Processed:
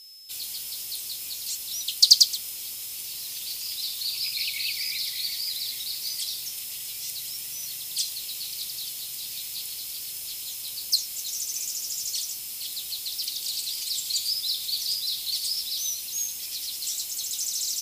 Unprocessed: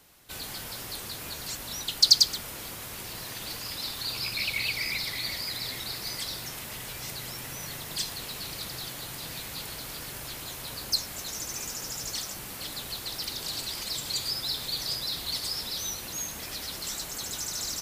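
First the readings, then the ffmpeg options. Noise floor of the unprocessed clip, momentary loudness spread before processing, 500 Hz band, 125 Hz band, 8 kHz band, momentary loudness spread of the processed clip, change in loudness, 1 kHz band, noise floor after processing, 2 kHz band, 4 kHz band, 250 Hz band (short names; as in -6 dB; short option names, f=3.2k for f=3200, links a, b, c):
-40 dBFS, 9 LU, under -15 dB, under -15 dB, +5.0 dB, 7 LU, +3.5 dB, under -15 dB, -36 dBFS, -5.5 dB, +3.0 dB, under -15 dB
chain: -af "aexciter=amount=9.8:drive=3.1:freq=2.4k,aeval=exprs='val(0)+0.0355*sin(2*PI*5200*n/s)':c=same,volume=-16dB"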